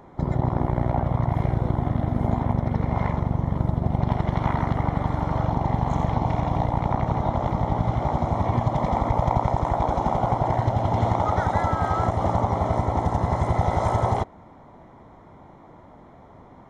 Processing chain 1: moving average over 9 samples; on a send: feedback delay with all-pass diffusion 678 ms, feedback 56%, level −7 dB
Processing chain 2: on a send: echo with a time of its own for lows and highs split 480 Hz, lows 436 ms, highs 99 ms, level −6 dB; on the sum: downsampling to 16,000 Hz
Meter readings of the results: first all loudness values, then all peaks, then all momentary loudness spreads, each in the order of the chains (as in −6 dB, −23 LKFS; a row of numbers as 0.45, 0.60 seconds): −23.5, −23.0 LKFS; −6.5, −5.0 dBFS; 8, 3 LU